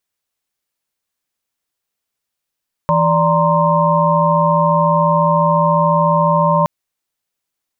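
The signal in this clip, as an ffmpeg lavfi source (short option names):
-f lavfi -i "aevalsrc='0.158*(sin(2*PI*164.81*t)+sin(2*PI*587.33*t)+sin(2*PI*932.33*t)+sin(2*PI*1046.5*t))':d=3.77:s=44100"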